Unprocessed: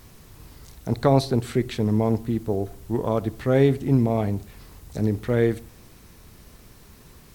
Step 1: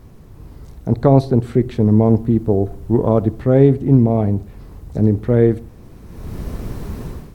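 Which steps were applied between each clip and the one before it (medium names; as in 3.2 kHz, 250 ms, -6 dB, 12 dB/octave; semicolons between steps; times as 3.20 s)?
tilt shelf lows +8.5 dB, about 1.3 kHz; level rider gain up to 16 dB; trim -1 dB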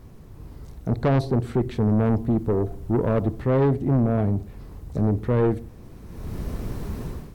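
saturation -12 dBFS, distortion -10 dB; trim -3 dB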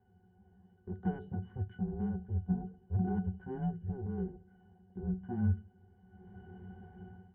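mistuned SSB -250 Hz 320–3000 Hz; pitch-class resonator F#, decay 0.15 s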